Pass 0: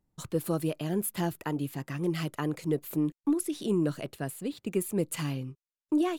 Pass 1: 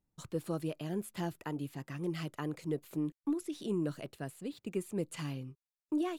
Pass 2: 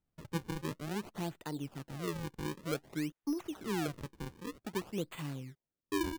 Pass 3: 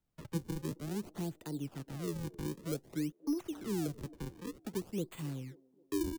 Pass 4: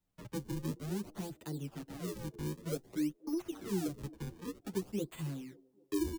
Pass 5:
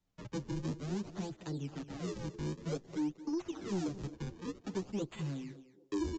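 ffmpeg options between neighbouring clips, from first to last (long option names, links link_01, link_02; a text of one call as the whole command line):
ffmpeg -i in.wav -filter_complex "[0:a]acrossover=split=9000[link_01][link_02];[link_02]acompressor=threshold=-55dB:ratio=4:attack=1:release=60[link_03];[link_01][link_03]amix=inputs=2:normalize=0,volume=-6.5dB" out.wav
ffmpeg -i in.wav -af "acrusher=samples=38:mix=1:aa=0.000001:lfo=1:lforange=60.8:lforate=0.53,volume=-1.5dB" out.wav
ffmpeg -i in.wav -filter_complex "[0:a]acrossover=split=290|490|4700[link_01][link_02][link_03][link_04];[link_02]aecho=1:1:267|534|801|1068|1335:0.2|0.0998|0.0499|0.0249|0.0125[link_05];[link_03]acompressor=threshold=-53dB:ratio=6[link_06];[link_01][link_05][link_06][link_04]amix=inputs=4:normalize=0,volume=1dB" out.wav
ffmpeg -i in.wav -filter_complex "[0:a]asplit=2[link_01][link_02];[link_02]adelay=8.4,afreqshift=1.1[link_03];[link_01][link_03]amix=inputs=2:normalize=1,volume=3dB" out.wav
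ffmpeg -i in.wav -af "aresample=16000,asoftclip=type=tanh:threshold=-30.5dB,aresample=44100,aecho=1:1:222:0.168,volume=2dB" out.wav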